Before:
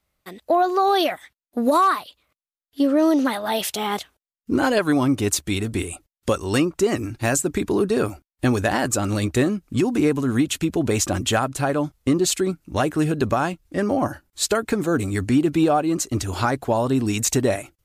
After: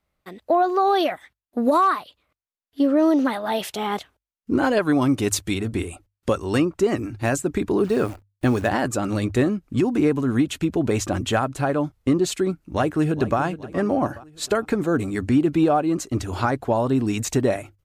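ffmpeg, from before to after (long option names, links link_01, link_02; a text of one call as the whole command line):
ffmpeg -i in.wav -filter_complex "[0:a]asettb=1/sr,asplit=3[link_01][link_02][link_03];[link_01]atrim=end=5.014[link_04];[link_02]atrim=start=5.01:end=5.54,asetpts=PTS-STARTPTS,afade=type=in:duration=0.004:curve=qsin,afade=type=out:start_time=0.526:duration=0.004:curve=qsin,equalizer=frequency=12000:width_type=o:width=3:gain=6.5[link_05];[link_03]atrim=start=5.536[link_06];[link_04][link_05]acrossfade=duration=0.004:curve1=hsin:curve2=qsin[link_07];[link_07][link_06]acrossfade=duration=0.004:curve1=qsin:curve2=hsin,asplit=3[link_08][link_09][link_10];[link_08]afade=type=out:start_time=7.83:duration=0.02[link_11];[link_09]acrusher=bits=7:dc=4:mix=0:aa=0.000001,afade=type=in:start_time=7.83:duration=0.02,afade=type=out:start_time=8.68:duration=0.02[link_12];[link_10]afade=type=in:start_time=8.68:duration=0.02[link_13];[link_11][link_12][link_13]amix=inputs=3:normalize=0,asplit=2[link_14][link_15];[link_15]afade=type=in:start_time=12.63:duration=0.01,afade=type=out:start_time=13.39:duration=0.01,aecho=0:1:420|840|1260|1680:0.199526|0.0897868|0.0404041|0.0181818[link_16];[link_14][link_16]amix=inputs=2:normalize=0,highshelf=frequency=3600:gain=-9.5,bandreject=frequency=50:width_type=h:width=6,bandreject=frequency=100:width_type=h:width=6" out.wav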